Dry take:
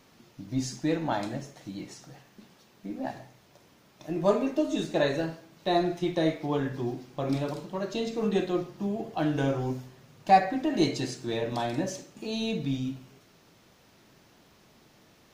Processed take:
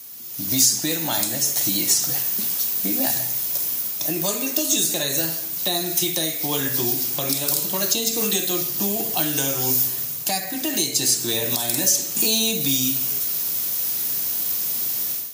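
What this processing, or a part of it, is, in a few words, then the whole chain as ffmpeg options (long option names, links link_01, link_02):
FM broadcast chain: -filter_complex "[0:a]highpass=65,dynaudnorm=framelen=270:gausssize=3:maxgain=16dB,acrossover=split=250|1800|5500[link_01][link_02][link_03][link_04];[link_01]acompressor=threshold=-32dB:ratio=4[link_05];[link_02]acompressor=threshold=-27dB:ratio=4[link_06];[link_03]acompressor=threshold=-37dB:ratio=4[link_07];[link_04]acompressor=threshold=-40dB:ratio=4[link_08];[link_05][link_06][link_07][link_08]amix=inputs=4:normalize=0,aemphasis=mode=production:type=75fm,alimiter=limit=-14.5dB:level=0:latency=1:release=373,asoftclip=type=hard:threshold=-17.5dB,lowpass=frequency=15000:width=0.5412,lowpass=frequency=15000:width=1.3066,aemphasis=mode=production:type=75fm"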